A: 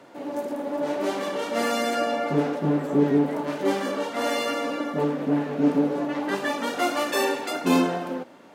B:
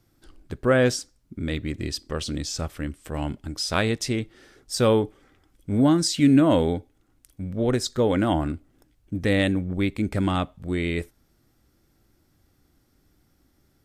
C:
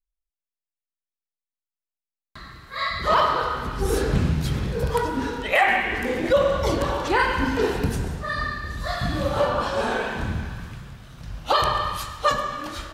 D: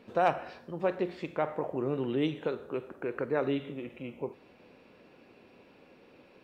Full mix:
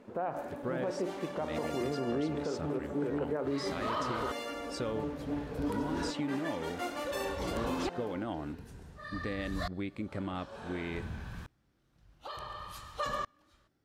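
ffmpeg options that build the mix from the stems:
ffmpeg -i stem1.wav -i stem2.wav -i stem3.wav -i stem4.wav -filter_complex "[0:a]volume=-13dB[link_01];[1:a]highpass=frequency=150:poles=1,aemphasis=mode=reproduction:type=50fm,acompressor=threshold=-24dB:ratio=6,volume=-9dB[link_02];[2:a]aeval=exprs='val(0)*pow(10,-32*if(lt(mod(-0.56*n/s,1),2*abs(-0.56)/1000),1-mod(-0.56*n/s,1)/(2*abs(-0.56)/1000),(mod(-0.56*n/s,1)-2*abs(-0.56)/1000)/(1-2*abs(-0.56)/1000))/20)':channel_layout=same,adelay=750,volume=-6.5dB[link_03];[3:a]lowpass=1400,volume=0.5dB[link_04];[link_01][link_02][link_03][link_04]amix=inputs=4:normalize=0,alimiter=level_in=0.5dB:limit=-24dB:level=0:latency=1:release=104,volume=-0.5dB" out.wav

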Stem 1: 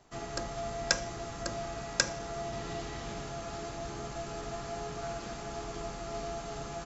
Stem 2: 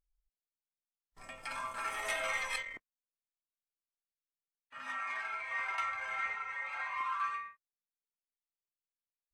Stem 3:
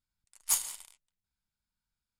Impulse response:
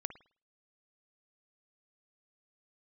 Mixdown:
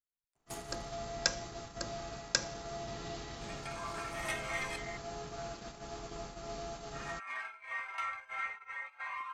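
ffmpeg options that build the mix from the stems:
-filter_complex "[0:a]adynamicequalizer=threshold=0.00224:dfrequency=4300:dqfactor=1.6:tfrequency=4300:tqfactor=1.6:attack=5:release=100:ratio=0.375:range=2.5:mode=boostabove:tftype=bell,adelay=350,volume=-4.5dB[link_01];[1:a]tremolo=f=2.9:d=0.53,adelay=2200,volume=-1dB[link_02];[2:a]lowpass=frequency=2500:poles=1,alimiter=level_in=1.5dB:limit=-24dB:level=0:latency=1:release=92,volume=-1.5dB,volume=-8.5dB[link_03];[link_01][link_02][link_03]amix=inputs=3:normalize=0,agate=range=-14dB:threshold=-44dB:ratio=16:detection=peak"

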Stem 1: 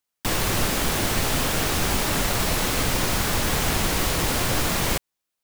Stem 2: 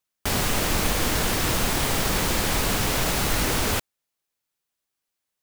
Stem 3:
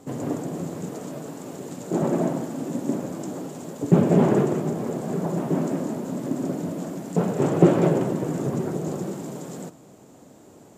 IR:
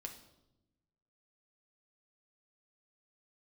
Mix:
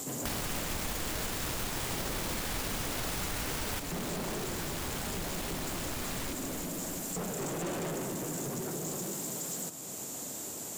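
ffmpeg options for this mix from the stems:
-filter_complex "[0:a]adelay=1350,volume=3dB,asplit=2[link_01][link_02];[link_02]volume=-20.5dB[link_03];[1:a]acrusher=bits=5:dc=4:mix=0:aa=0.000001,volume=-3dB[link_04];[2:a]crystalizer=i=9:c=0,volume=2.5dB[link_05];[link_01][link_05]amix=inputs=2:normalize=0,asoftclip=type=tanh:threshold=-21dB,alimiter=level_in=5dB:limit=-24dB:level=0:latency=1:release=373,volume=-5dB,volume=0dB[link_06];[link_03]aecho=0:1:330|660|990|1320|1650|1980|2310|2640|2970:1|0.58|0.336|0.195|0.113|0.0656|0.0381|0.0221|0.0128[link_07];[link_04][link_06][link_07]amix=inputs=3:normalize=0,acompressor=threshold=-35dB:ratio=3"

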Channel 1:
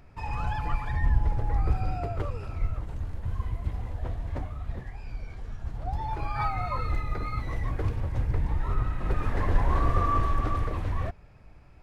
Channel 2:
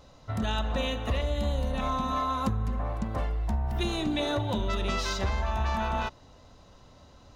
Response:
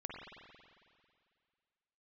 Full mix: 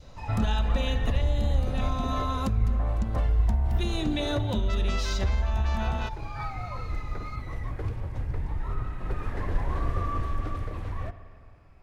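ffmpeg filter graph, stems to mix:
-filter_complex "[0:a]volume=-6dB,asplit=2[link_01][link_02];[link_02]volume=-6dB[link_03];[1:a]lowshelf=frequency=69:gain=11,alimiter=limit=-19.5dB:level=0:latency=1:release=281,volume=2dB[link_04];[2:a]atrim=start_sample=2205[link_05];[link_03][link_05]afir=irnorm=-1:irlink=0[link_06];[link_01][link_04][link_06]amix=inputs=3:normalize=0,adynamicequalizer=threshold=0.00708:dfrequency=990:dqfactor=1.4:tfrequency=990:tqfactor=1.4:attack=5:release=100:ratio=0.375:range=2.5:mode=cutabove:tftype=bell"

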